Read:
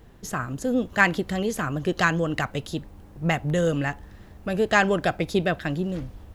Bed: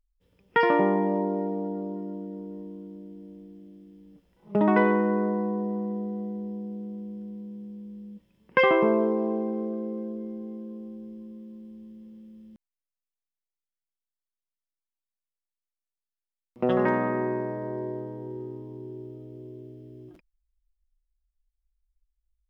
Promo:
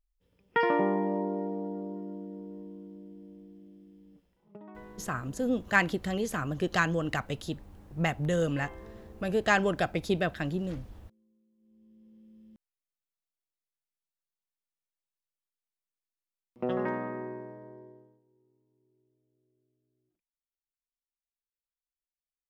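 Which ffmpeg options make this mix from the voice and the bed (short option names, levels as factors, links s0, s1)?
-filter_complex "[0:a]adelay=4750,volume=0.562[s0];[1:a]volume=8.91,afade=t=out:st=4.24:d=0.34:silence=0.0668344,afade=t=in:st=11.57:d=1.11:silence=0.0668344,afade=t=out:st=16.16:d=2.06:silence=0.0334965[s1];[s0][s1]amix=inputs=2:normalize=0"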